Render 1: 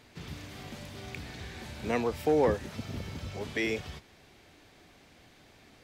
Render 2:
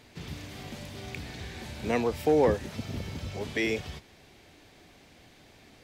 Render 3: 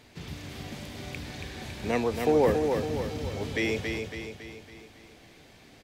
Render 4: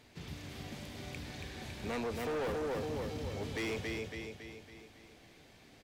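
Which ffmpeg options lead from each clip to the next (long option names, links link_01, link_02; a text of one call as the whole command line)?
ffmpeg -i in.wav -af "equalizer=frequency=1300:width_type=o:width=0.77:gain=-3,volume=2.5dB" out.wav
ffmpeg -i in.wav -af "aecho=1:1:278|556|834|1112|1390|1668:0.562|0.287|0.146|0.0746|0.038|0.0194" out.wav
ffmpeg -i in.wav -af "asoftclip=type=hard:threshold=-28dB,volume=-5.5dB" out.wav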